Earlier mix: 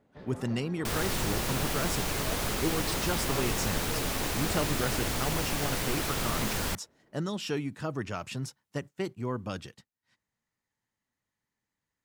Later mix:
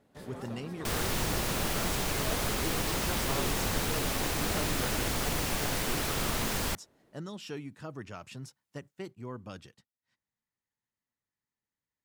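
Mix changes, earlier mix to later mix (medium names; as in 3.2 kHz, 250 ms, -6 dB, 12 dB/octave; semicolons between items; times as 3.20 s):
speech -8.0 dB; first sound: remove distance through air 250 m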